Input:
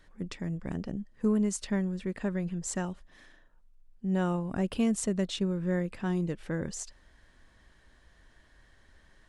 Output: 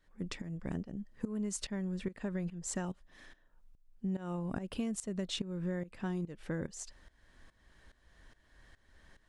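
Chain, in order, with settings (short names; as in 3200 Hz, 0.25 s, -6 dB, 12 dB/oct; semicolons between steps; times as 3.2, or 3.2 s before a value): tremolo saw up 2.4 Hz, depth 85%; compressor 12:1, threshold -34 dBFS, peak gain reduction 10 dB; gain +2 dB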